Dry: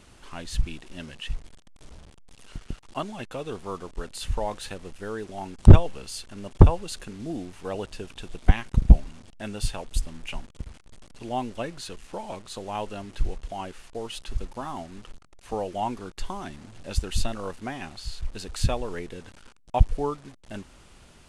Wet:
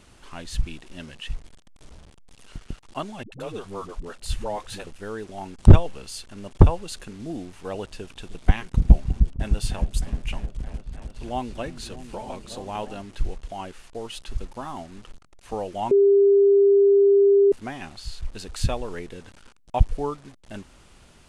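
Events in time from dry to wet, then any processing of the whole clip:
3.23–4.87 dispersion highs, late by 90 ms, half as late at 310 Hz
7.99–13.01 repeats that get brighter 0.307 s, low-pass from 200 Hz, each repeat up 1 oct, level -6 dB
15.91–17.52 bleep 399 Hz -12.5 dBFS

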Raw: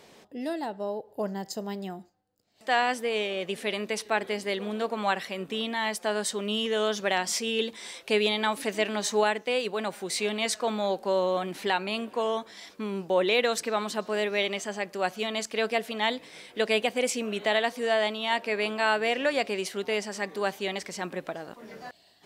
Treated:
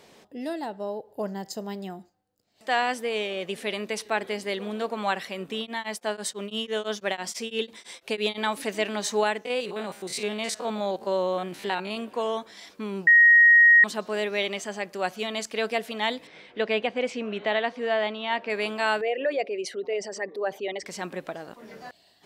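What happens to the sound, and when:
5.59–8.38 beating tremolo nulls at 6 Hz
9.45–11.97 stepped spectrum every 50 ms
13.07–13.84 bleep 1880 Hz -11.5 dBFS
16.27–18.5 LPF 3200 Hz
19.01–20.86 formant sharpening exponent 2

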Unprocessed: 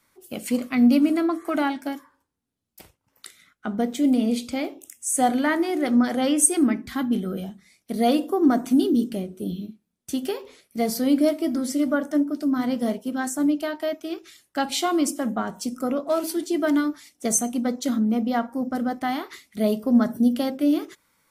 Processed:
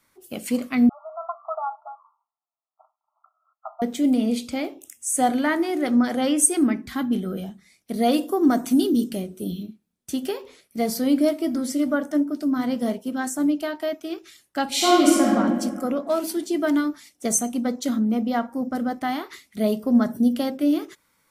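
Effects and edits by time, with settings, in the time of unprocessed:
0.89–3.82 brick-wall FIR band-pass 610–1400 Hz
8.13–9.63 high shelf 3600 Hz +6.5 dB
14.7–15.33 reverb throw, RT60 1.7 s, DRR -6.5 dB

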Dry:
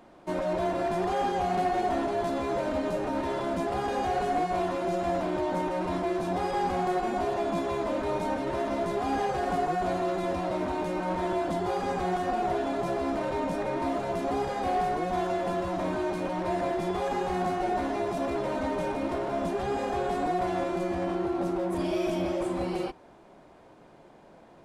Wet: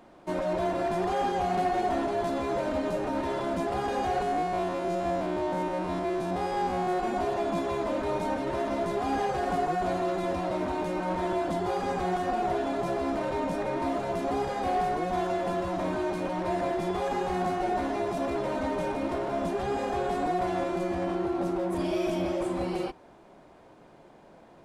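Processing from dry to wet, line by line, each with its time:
4.22–6.99 stepped spectrum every 50 ms

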